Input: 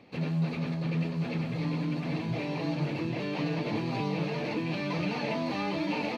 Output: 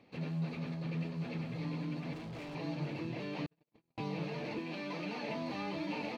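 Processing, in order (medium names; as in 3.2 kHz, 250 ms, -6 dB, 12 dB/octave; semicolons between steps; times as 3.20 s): 2.13–2.55 s: overload inside the chain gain 34.5 dB; 3.46–3.98 s: gate -25 dBFS, range -58 dB; 4.58–5.29 s: high-pass 190 Hz 24 dB/octave; trim -7.5 dB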